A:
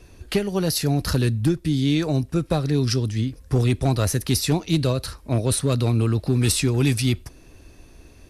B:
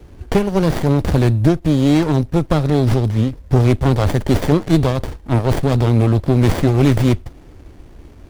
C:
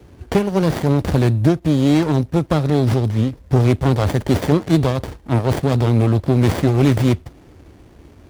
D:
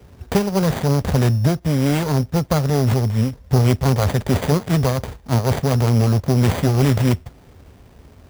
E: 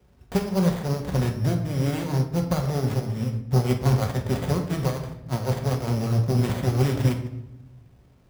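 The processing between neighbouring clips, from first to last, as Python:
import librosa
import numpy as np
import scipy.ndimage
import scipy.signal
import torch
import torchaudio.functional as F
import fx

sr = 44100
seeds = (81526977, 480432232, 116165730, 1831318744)

y1 = fx.running_max(x, sr, window=33)
y1 = F.gain(torch.from_numpy(y1), 8.0).numpy()
y2 = scipy.signal.sosfilt(scipy.signal.butter(2, 67.0, 'highpass', fs=sr, output='sos'), y1)
y2 = F.gain(torch.from_numpy(y2), -1.0).numpy()
y3 = fx.peak_eq(y2, sr, hz=320.0, db=-13.5, octaves=0.26)
y3 = fx.sample_hold(y3, sr, seeds[0], rate_hz=5400.0, jitter_pct=0)
y4 = fx.room_shoebox(y3, sr, seeds[1], volume_m3=400.0, walls='mixed', distance_m=1.0)
y4 = fx.upward_expand(y4, sr, threshold_db=-24.0, expansion=1.5)
y4 = F.gain(torch.from_numpy(y4), -6.5).numpy()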